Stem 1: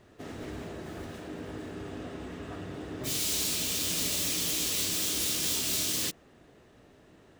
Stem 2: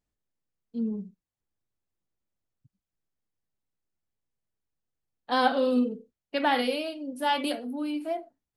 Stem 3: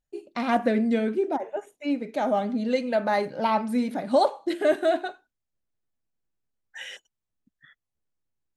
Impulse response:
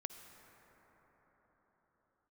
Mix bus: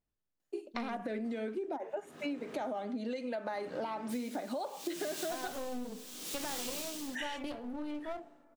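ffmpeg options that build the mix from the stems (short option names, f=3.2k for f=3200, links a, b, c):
-filter_complex "[0:a]highpass=f=150:w=0.5412,highpass=f=150:w=1.3066,equalizer=f=1.1k:t=o:w=0.77:g=4.5,aeval=exprs='val(0)*pow(10,-20*(0.5-0.5*cos(2*PI*0.72*n/s))/20)':c=same,adelay=1050,volume=-5dB,asplit=2[a][b];[b]volume=-6dB[c];[1:a]lowpass=f=2.4k:p=1,alimiter=limit=-19dB:level=0:latency=1:release=112,aeval=exprs='clip(val(0),-1,0.0119)':c=same,volume=-4dB,asplit=2[d][e];[e]volume=-14dB[f];[2:a]highpass=f=240:w=0.5412,highpass=f=240:w=1.3066,alimiter=limit=-20.5dB:level=0:latency=1:release=102,adelay=400,volume=1.5dB[g];[3:a]atrim=start_sample=2205[h];[c][f]amix=inputs=2:normalize=0[i];[i][h]afir=irnorm=-1:irlink=0[j];[a][d][g][j]amix=inputs=4:normalize=0,acompressor=threshold=-35dB:ratio=6"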